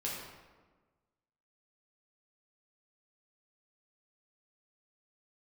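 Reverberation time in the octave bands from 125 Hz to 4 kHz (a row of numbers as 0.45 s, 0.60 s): 1.5 s, 1.6 s, 1.4 s, 1.3 s, 1.1 s, 0.80 s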